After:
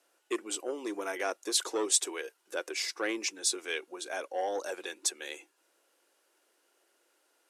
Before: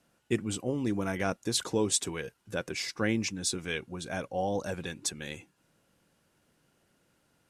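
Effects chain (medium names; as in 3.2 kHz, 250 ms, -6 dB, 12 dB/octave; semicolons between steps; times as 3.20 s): elliptic high-pass 340 Hz, stop band 80 dB; peaking EQ 11 kHz +4 dB 2.2 oct; transformer saturation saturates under 1.6 kHz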